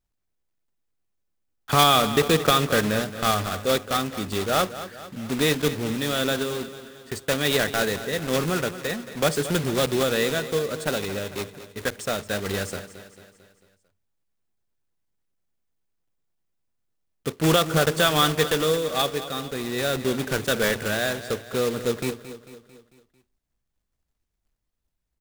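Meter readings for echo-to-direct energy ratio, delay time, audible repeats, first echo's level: −12.0 dB, 223 ms, 4, −13.5 dB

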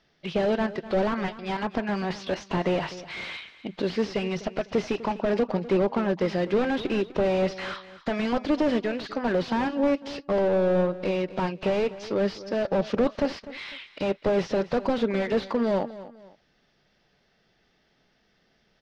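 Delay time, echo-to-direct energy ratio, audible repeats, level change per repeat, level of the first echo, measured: 250 ms, −15.5 dB, 2, −9.5 dB, −16.0 dB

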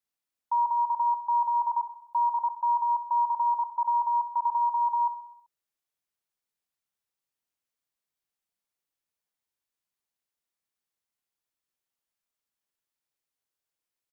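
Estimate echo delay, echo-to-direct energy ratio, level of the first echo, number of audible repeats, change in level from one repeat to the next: 64 ms, −9.5 dB, −11.0 dB, 5, −5.0 dB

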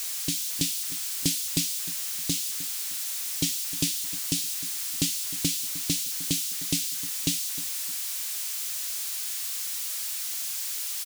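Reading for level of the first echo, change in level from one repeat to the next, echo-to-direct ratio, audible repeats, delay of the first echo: −16.0 dB, −10.5 dB, −15.5 dB, 2, 308 ms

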